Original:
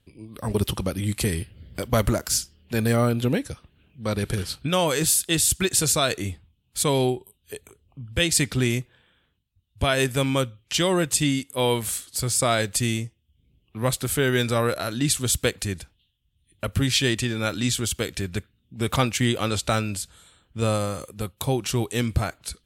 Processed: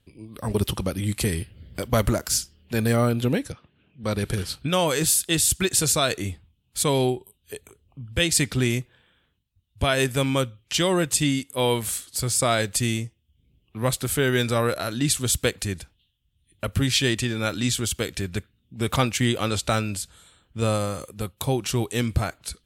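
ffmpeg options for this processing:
-filter_complex "[0:a]asettb=1/sr,asplit=3[a][b][c];[a]atrim=end=3.524[d];[b]atrim=start=3.52:end=4.04,asetpts=PTS-STARTPTS,afade=t=in:d=0.004:c=qsin,afade=t=out:st=0.516:d=0.004:c=qsin,highpass=120,lowpass=3.6k[e];[c]atrim=start=4.036[f];[d][e]acrossfade=d=0.004:c1=hsin:c2=qsin[g];[g][f]acrossfade=d=0.004:c1=qsin:c2=hsin"

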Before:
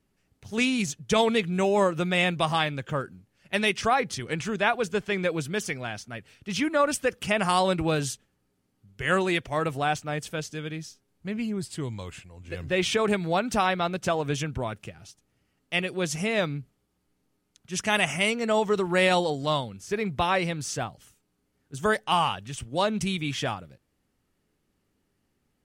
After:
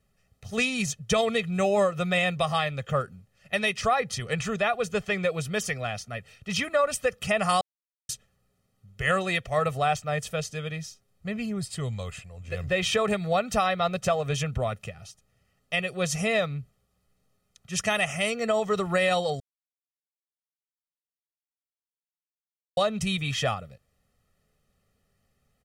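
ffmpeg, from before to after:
-filter_complex "[0:a]asplit=5[a][b][c][d][e];[a]atrim=end=7.61,asetpts=PTS-STARTPTS,afade=t=out:st=7.606:d=0.004:c=hsin[f];[b]atrim=start=7.61:end=8.09,asetpts=PTS-STARTPTS,volume=0[g];[c]atrim=start=8.09:end=19.4,asetpts=PTS-STARTPTS,afade=t=in:d=0.004:c=hsin,afade=t=out:st=11.306:d=0.004:c=hsin[h];[d]atrim=start=19.4:end=22.77,asetpts=PTS-STARTPTS,volume=0[i];[e]atrim=start=22.77,asetpts=PTS-STARTPTS,afade=t=in:d=0.004:c=hsin[j];[f][g][h][i][j]concat=n=5:v=0:a=1,aecho=1:1:1.6:0.81,alimiter=limit=-14dB:level=0:latency=1:release=316"

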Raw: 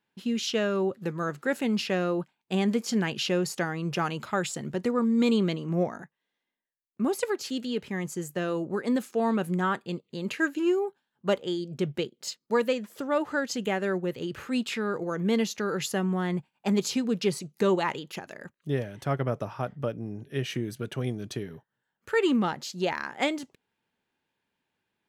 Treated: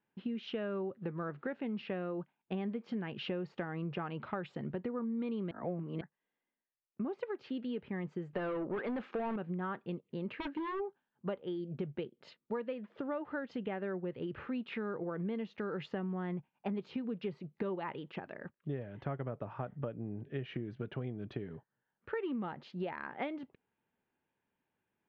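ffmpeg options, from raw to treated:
-filter_complex "[0:a]asettb=1/sr,asplit=3[a][b][c];[a]atrim=end=8.334[d];[b]atrim=start=8.33:end=9.36,asetpts=PTS-STARTPTS,afade=t=in:d=0.004:c=qsin,afade=t=out:st=1.026:d=0.004:c=qsin,asplit=2[e][f];[f]highpass=f=720:p=1,volume=23dB,asoftclip=type=tanh:threshold=-17dB[g];[e][g]amix=inputs=2:normalize=0,lowpass=f=4k:p=1,volume=-6dB[h];[c]atrim=start=9.356[i];[d][h]acrossfade=d=0.004:c1=hsin:c2=qsin[j];[j][i]acrossfade=d=0.004:c1=qsin:c2=hsin,asplit=3[k][l][m];[k]afade=t=out:st=10.28:d=0.02[n];[l]aeval=exprs='0.0447*(abs(mod(val(0)/0.0447+3,4)-2)-1)':c=same,afade=t=in:st=10.28:d=0.02,afade=t=out:st=10.79:d=0.02[o];[m]afade=t=in:st=10.79:d=0.02[p];[n][o][p]amix=inputs=3:normalize=0,asplit=3[q][r][s];[q]atrim=end=5.512[t];[r]atrim=start=5.508:end=6.012,asetpts=PTS-STARTPTS,areverse[u];[s]atrim=start=6.008[v];[t][u]acrossfade=d=0.004:c1=hsin:c2=hsin[w];[w][v]acrossfade=d=0.004:c1=hsin:c2=hsin,lowpass=f=3.2k:w=0.5412,lowpass=f=3.2k:w=1.3066,highshelf=f=2.2k:g=-9,acompressor=threshold=-33dB:ratio=6,volume=-2dB"

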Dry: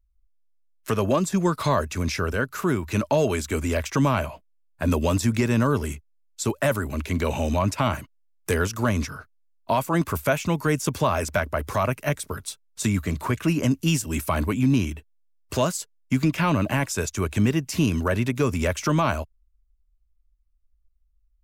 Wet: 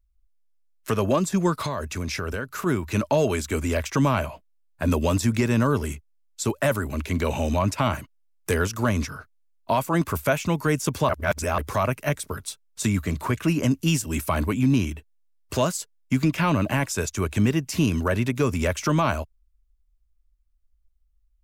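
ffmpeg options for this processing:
-filter_complex "[0:a]asplit=3[a][b][c];[a]afade=t=out:st=1.6:d=0.02[d];[b]acompressor=threshold=-24dB:ratio=6:attack=3.2:release=140:knee=1:detection=peak,afade=t=in:st=1.6:d=0.02,afade=t=out:st=2.65:d=0.02[e];[c]afade=t=in:st=2.65:d=0.02[f];[d][e][f]amix=inputs=3:normalize=0,asplit=3[g][h][i];[g]atrim=end=11.092[j];[h]atrim=start=11.088:end=11.582,asetpts=PTS-STARTPTS,areverse[k];[i]atrim=start=11.578[l];[j][k]acrossfade=d=0.004:c1=hsin:c2=hsin[m];[m][l]acrossfade=d=0.004:c1=hsin:c2=hsin"

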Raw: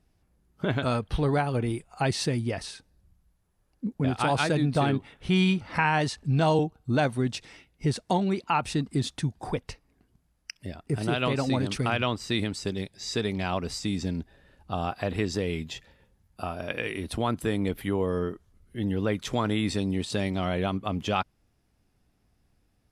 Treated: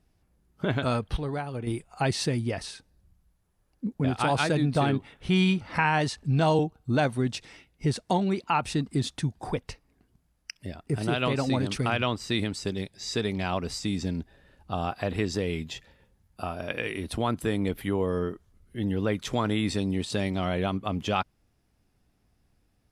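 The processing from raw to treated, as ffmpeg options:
-filter_complex "[0:a]asplit=3[a][b][c];[a]atrim=end=1.172[d];[b]atrim=start=1.168:end=1.672,asetpts=PTS-STARTPTS,volume=-7dB[e];[c]atrim=start=1.668[f];[d][e]acrossfade=d=0.004:c1=hsin:c2=hsin[g];[g][f]acrossfade=d=0.004:c1=hsin:c2=hsin"

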